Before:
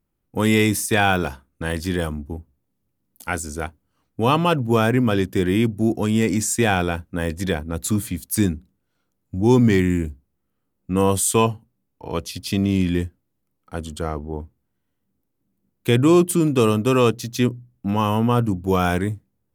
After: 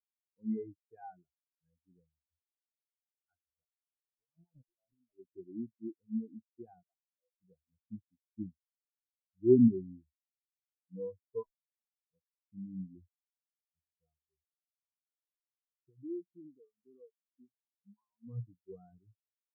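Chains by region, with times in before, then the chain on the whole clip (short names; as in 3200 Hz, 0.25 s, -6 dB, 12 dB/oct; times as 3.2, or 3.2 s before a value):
3.62–5.19 sample gate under -19.5 dBFS + high shelf 2400 Hz -8 dB + negative-ratio compressor -25 dBFS
6.83–7.4 steep high-pass 440 Hz + high shelf 3000 Hz -11.5 dB + Doppler distortion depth 0.25 ms
11.43–12.08 robotiser 321 Hz + AM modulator 79 Hz, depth 100%
15.89–18.27 compressor, threshold -17 dBFS + low shelf 63 Hz -8 dB
whole clip: LPF 2000 Hz 6 dB/oct; spectral noise reduction 9 dB; spectral expander 4:1; gain -8 dB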